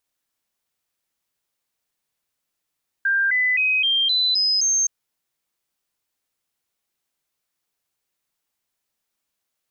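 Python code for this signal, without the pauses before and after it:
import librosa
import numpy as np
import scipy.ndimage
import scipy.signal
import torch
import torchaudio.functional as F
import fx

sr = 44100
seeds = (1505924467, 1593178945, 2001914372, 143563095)

y = fx.stepped_sweep(sr, from_hz=1590.0, direction='up', per_octave=3, tones=7, dwell_s=0.26, gap_s=0.0, level_db=-16.5)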